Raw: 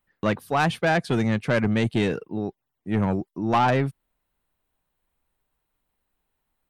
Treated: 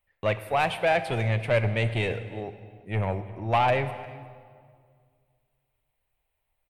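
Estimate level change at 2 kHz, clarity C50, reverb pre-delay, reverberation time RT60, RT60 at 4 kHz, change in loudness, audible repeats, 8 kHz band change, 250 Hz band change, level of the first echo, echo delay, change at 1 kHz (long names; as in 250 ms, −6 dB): −1.5 dB, 11.5 dB, 11 ms, 2.0 s, 1.3 s, −2.5 dB, 1, can't be measured, −11.5 dB, −22.5 dB, 352 ms, −1.5 dB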